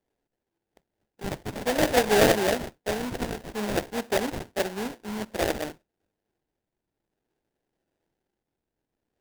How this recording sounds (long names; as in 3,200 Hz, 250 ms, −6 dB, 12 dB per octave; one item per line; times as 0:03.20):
phaser sweep stages 4, 0.55 Hz, lowest notch 570–4,200 Hz
aliases and images of a low sample rate 1,200 Hz, jitter 20%